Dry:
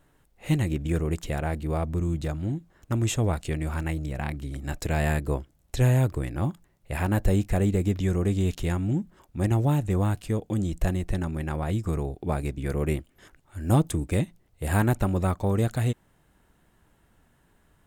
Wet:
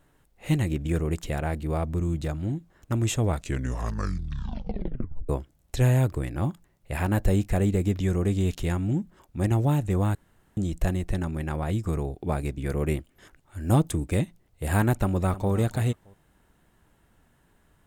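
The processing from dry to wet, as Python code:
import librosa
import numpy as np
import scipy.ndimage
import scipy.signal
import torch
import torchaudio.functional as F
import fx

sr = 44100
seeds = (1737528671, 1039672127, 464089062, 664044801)

y = fx.echo_throw(x, sr, start_s=14.93, length_s=0.58, ms=310, feedback_pct=20, wet_db=-15.0)
y = fx.edit(y, sr, fx.tape_stop(start_s=3.28, length_s=2.01),
    fx.room_tone_fill(start_s=10.15, length_s=0.42), tone=tone)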